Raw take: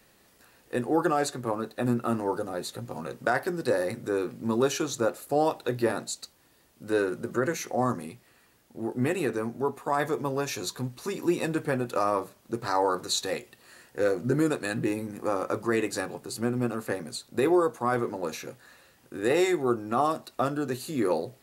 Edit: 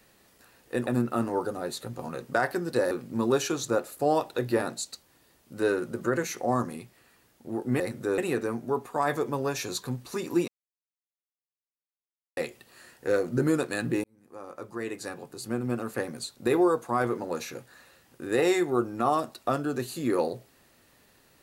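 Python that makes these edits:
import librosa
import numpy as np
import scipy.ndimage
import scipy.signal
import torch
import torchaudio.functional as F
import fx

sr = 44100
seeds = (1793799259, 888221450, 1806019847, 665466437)

y = fx.edit(x, sr, fx.cut(start_s=0.87, length_s=0.92),
    fx.move(start_s=3.83, length_s=0.38, to_s=9.1),
    fx.silence(start_s=11.4, length_s=1.89),
    fx.fade_in_span(start_s=14.96, length_s=2.03), tone=tone)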